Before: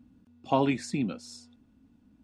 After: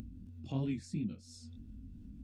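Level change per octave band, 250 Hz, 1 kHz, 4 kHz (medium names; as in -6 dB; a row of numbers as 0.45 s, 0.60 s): -8.0 dB, -24.0 dB, -12.5 dB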